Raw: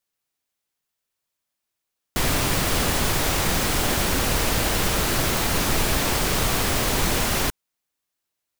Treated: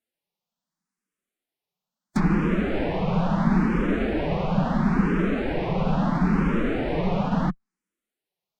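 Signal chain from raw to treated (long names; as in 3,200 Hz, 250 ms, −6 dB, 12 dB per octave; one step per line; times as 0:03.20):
loose part that buzzes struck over −30 dBFS, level −21 dBFS
spectral tilt −2 dB per octave
treble cut that deepens with the level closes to 1,800 Hz, closed at −15.5 dBFS
low shelf with overshoot 110 Hz −11 dB, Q 3
phase-vocoder pitch shift with formants kept +3 semitones
frequency shifter mixed with the dry sound +0.74 Hz
level +1 dB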